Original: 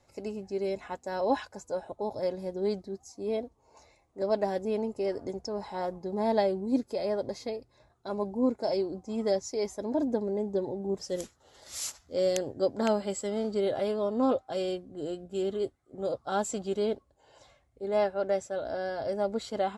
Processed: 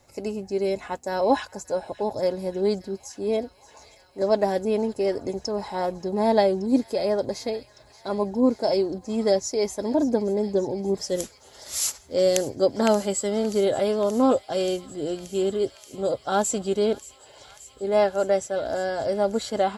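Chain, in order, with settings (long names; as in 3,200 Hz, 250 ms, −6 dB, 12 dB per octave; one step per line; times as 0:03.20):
high-shelf EQ 9,200 Hz +10 dB
on a send: delay with a high-pass on its return 579 ms, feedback 84%, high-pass 1,800 Hz, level −17 dB
on the sum: level +6.5 dB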